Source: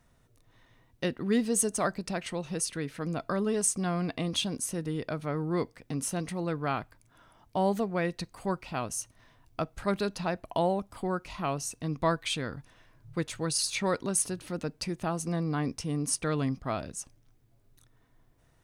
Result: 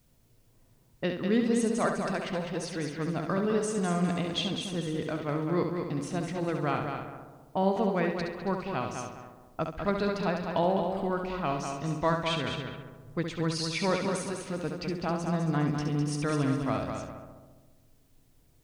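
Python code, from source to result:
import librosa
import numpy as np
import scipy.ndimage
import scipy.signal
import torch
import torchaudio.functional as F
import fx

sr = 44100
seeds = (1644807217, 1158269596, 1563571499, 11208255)

p1 = x + fx.echo_heads(x, sr, ms=68, heads='first and third', feedback_pct=55, wet_db=-6.5, dry=0)
p2 = fx.env_lowpass(p1, sr, base_hz=520.0, full_db=-27.0)
p3 = scipy.signal.sosfilt(scipy.signal.butter(2, 4400.0, 'lowpass', fs=sr, output='sos'), p2)
y = fx.quant_dither(p3, sr, seeds[0], bits=12, dither='triangular')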